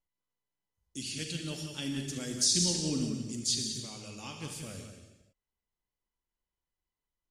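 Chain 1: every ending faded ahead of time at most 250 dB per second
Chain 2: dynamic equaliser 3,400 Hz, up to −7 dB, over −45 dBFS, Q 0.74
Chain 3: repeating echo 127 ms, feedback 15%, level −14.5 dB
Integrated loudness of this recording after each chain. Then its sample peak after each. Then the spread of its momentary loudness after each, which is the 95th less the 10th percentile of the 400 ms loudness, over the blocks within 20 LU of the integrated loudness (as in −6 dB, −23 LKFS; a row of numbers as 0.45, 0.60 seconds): −32.0, −35.0, −32.0 LKFS; −14.5, −16.5, −14.5 dBFS; 17, 14, 17 LU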